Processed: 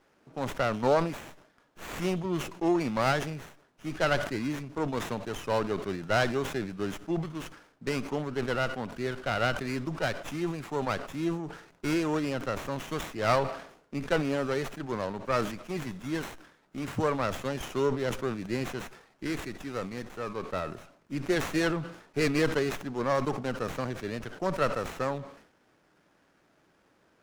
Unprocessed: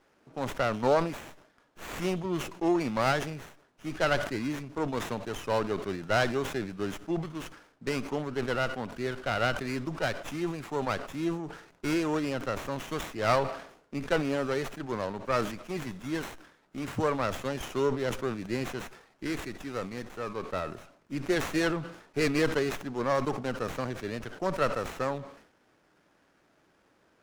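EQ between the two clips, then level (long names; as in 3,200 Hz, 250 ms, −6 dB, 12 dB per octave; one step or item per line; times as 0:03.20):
parametric band 160 Hz +2 dB
0.0 dB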